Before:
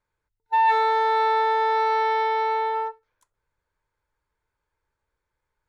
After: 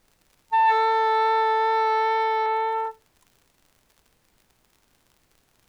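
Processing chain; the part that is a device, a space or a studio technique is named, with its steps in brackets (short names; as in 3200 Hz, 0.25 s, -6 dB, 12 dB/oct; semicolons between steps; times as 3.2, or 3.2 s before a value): 2.46–2.86 steep low-pass 4100 Hz; vinyl LP (wow and flutter 8.3 cents; crackle 77/s -44 dBFS; pink noise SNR 41 dB)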